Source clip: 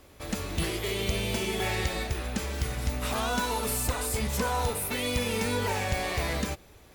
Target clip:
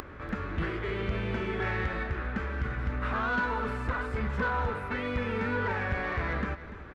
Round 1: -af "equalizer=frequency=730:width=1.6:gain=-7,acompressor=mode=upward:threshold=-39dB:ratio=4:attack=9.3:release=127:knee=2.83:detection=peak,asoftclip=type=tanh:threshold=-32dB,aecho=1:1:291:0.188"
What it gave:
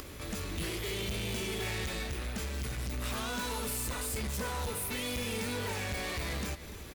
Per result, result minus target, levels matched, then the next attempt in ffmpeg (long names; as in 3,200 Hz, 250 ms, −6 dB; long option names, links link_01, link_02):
soft clipping: distortion +11 dB; 2,000 Hz band −3.5 dB
-af "equalizer=frequency=730:width=1.6:gain=-7,acompressor=mode=upward:threshold=-39dB:ratio=4:attack=9.3:release=127:knee=2.83:detection=peak,asoftclip=type=tanh:threshold=-21dB,aecho=1:1:291:0.188"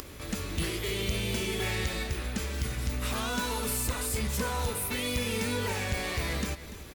2,000 Hz band −4.0 dB
-af "lowpass=frequency=1500:width_type=q:width=2.6,equalizer=frequency=730:width=1.6:gain=-7,acompressor=mode=upward:threshold=-39dB:ratio=4:attack=9.3:release=127:knee=2.83:detection=peak,asoftclip=type=tanh:threshold=-21dB,aecho=1:1:291:0.188"